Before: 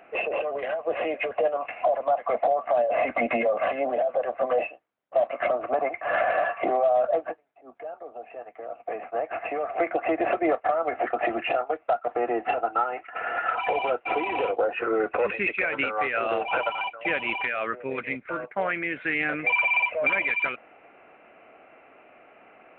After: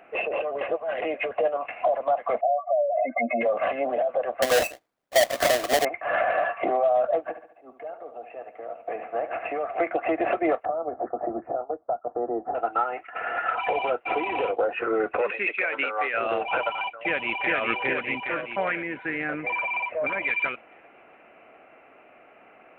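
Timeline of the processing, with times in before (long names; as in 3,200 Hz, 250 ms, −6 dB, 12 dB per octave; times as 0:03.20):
0:00.61–0:01.02: reverse
0:02.41–0:03.41: expanding power law on the bin magnitudes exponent 2.8
0:04.42–0:05.85: each half-wave held at its own peak
0:07.25–0:09.52: repeating echo 71 ms, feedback 48%, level −11 dB
0:10.65–0:12.55: Gaussian smoothing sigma 9 samples
0:15.21–0:16.14: high-pass filter 350 Hz
0:17.01–0:17.52: delay throw 410 ms, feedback 60%, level 0 dB
0:18.82–0:20.23: parametric band 3,000 Hz −8.5 dB 1.2 octaves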